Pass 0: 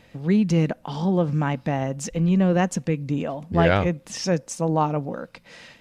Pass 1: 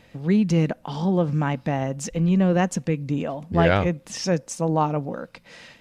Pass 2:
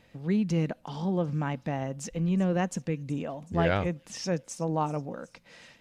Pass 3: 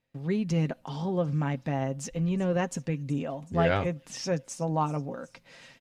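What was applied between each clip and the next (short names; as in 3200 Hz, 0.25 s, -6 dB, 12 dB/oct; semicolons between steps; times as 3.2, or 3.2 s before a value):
nothing audible
thin delay 0.374 s, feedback 58%, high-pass 5400 Hz, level -17 dB; gain -7 dB
gate with hold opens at -49 dBFS; comb 7.5 ms, depth 42%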